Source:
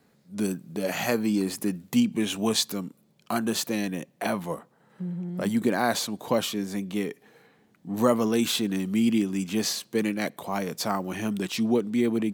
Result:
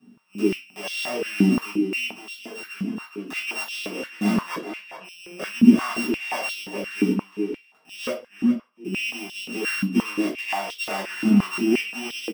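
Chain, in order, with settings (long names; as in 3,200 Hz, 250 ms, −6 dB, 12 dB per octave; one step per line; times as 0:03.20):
samples sorted by size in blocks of 16 samples
0:04.53–0:05.03: low-pass filter 8,400 Hz → 4,100 Hz
0:08.10–0:08.85: noise gate −18 dBFS, range −44 dB
brickwall limiter −19 dBFS, peak gain reduction 11 dB
slap from a distant wall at 71 metres, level −7 dB
0:02.16–0:03.35: downward compressor 4 to 1, threshold −35 dBFS, peak gain reduction 11 dB
convolution reverb RT60 0.30 s, pre-delay 4 ms, DRR −9 dB
high-pass on a step sequencer 5.7 Hz 230–3,500 Hz
level −12.5 dB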